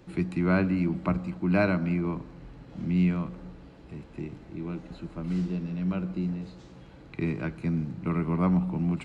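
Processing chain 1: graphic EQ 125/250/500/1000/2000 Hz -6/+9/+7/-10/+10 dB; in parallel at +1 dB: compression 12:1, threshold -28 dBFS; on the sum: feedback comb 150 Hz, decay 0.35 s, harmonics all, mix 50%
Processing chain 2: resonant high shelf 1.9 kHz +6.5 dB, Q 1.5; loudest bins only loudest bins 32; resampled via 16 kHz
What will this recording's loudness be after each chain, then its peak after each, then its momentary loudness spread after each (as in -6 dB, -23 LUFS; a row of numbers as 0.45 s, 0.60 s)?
-27.5 LUFS, -29.0 LUFS; -10.0 dBFS, -10.0 dBFS; 16 LU, 18 LU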